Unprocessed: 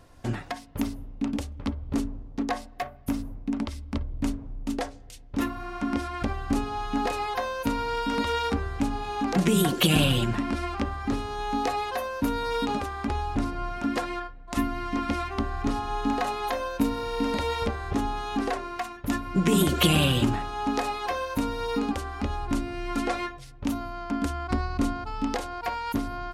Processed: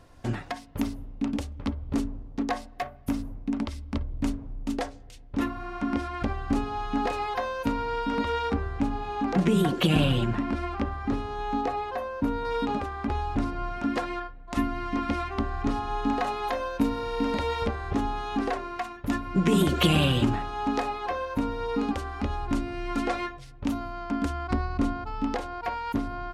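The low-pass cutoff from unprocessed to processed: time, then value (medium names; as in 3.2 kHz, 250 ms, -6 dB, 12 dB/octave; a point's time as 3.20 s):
low-pass 6 dB/octave
8.1 kHz
from 5.03 s 3.6 kHz
from 7.70 s 2.1 kHz
from 11.61 s 1.2 kHz
from 12.45 s 2.2 kHz
from 13.11 s 4 kHz
from 20.84 s 1.9 kHz
from 21.79 s 4.9 kHz
from 24.53 s 2.6 kHz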